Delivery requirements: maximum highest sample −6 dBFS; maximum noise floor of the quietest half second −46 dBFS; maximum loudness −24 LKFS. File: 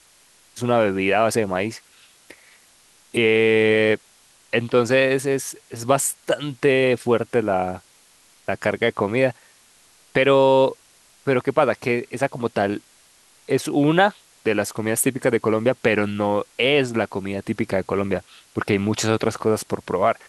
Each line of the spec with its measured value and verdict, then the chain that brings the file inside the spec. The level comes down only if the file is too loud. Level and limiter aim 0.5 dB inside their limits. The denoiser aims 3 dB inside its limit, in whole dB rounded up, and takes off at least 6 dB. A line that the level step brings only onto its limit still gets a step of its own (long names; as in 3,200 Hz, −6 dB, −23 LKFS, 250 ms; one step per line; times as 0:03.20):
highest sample −4.0 dBFS: out of spec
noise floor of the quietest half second −55 dBFS: in spec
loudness −21.0 LKFS: out of spec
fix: level −3.5 dB